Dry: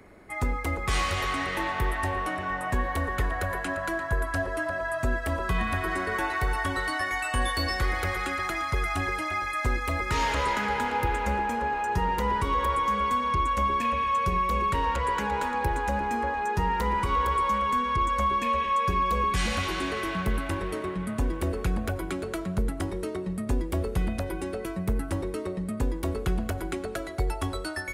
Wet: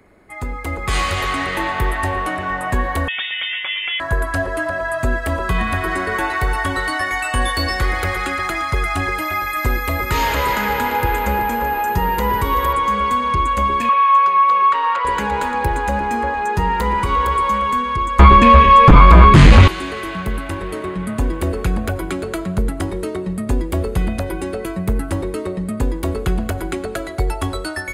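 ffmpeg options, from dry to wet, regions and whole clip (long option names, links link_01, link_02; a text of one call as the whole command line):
ffmpeg -i in.wav -filter_complex "[0:a]asettb=1/sr,asplit=3[link_01][link_02][link_03];[link_01]atrim=end=3.084[link_04];[link_02]atrim=start=3.08:end=4,asetpts=PTS-STARTPTS,afade=type=in:duration=0.004:curve=qsin,afade=type=out:start_time=0.916:duration=0.004:curve=qsin,highpass=frequency=310:poles=1,lowpass=frequency=3100:width_type=q:width=0.5098,lowpass=frequency=3100:width_type=q:width=0.6013,lowpass=frequency=3100:width_type=q:width=0.9,lowpass=frequency=3100:width_type=q:width=2.563,afreqshift=-3700[link_05];[link_03]atrim=start=3.996[link_06];[link_04][link_05]acrossfade=duration=0.004:curve1=hsin:curve2=qsin[link_07];[link_07][link_06]acrossfade=duration=0.004:curve1=qsin:curve2=hsin,asettb=1/sr,asplit=3[link_08][link_09][link_10];[link_08]atrim=end=9.184[link_11];[link_09]atrim=start=9.18:end=12.73,asetpts=PTS-STARTPTS,afade=type=in:duration=0.004:curve=qsin,afade=type=out:start_time=3.546:duration=0.004:curve=qsin,aeval=exprs='val(0)+0.00562*sin(2*PI*13000*n/s)':channel_layout=same,aecho=1:1:382:0.237,atrim=end_sample=156555[link_12];[link_10]atrim=start=12.726[link_13];[link_11][link_12]acrossfade=duration=0.004:curve1=hsin:curve2=qsin[link_14];[link_14][link_13]acrossfade=duration=0.004:curve1=qsin:curve2=hsin,asettb=1/sr,asplit=3[link_15][link_16][link_17];[link_15]atrim=end=13.894[link_18];[link_16]atrim=start=13.89:end=15.05,asetpts=PTS-STARTPTS,afade=type=in:duration=0.004:curve=qsin,afade=type=out:start_time=1.156:duration=0.004:curve=qsin,highpass=730,lowpass=4000,equalizer=frequency=1200:width_type=o:width=0.3:gain=11[link_19];[link_17]atrim=start=15.046[link_20];[link_18][link_19]acrossfade=duration=0.004:curve1=hsin:curve2=qsin[link_21];[link_21][link_20]acrossfade=duration=0.004:curve1=qsin:curve2=hsin,asettb=1/sr,asplit=3[link_22][link_23][link_24];[link_22]atrim=end=18.194[link_25];[link_23]atrim=start=18.19:end=19.68,asetpts=PTS-STARTPTS,afade=type=in:duration=0.004:curve=qsin,afade=type=out:start_time=1.486:duration=0.004:curve=qsin,aemphasis=mode=reproduction:type=bsi,aeval=exprs='0.501*sin(PI/2*3.16*val(0)/0.501)':channel_layout=same[link_26];[link_24]atrim=start=19.676[link_27];[link_25][link_26]acrossfade=duration=0.004:curve1=hsin:curve2=qsin[link_28];[link_28][link_27]acrossfade=duration=0.004:curve1=qsin:curve2=hsin,bandreject=frequency=5600:width=11,dynaudnorm=framelen=490:gausssize=3:maxgain=8dB" out.wav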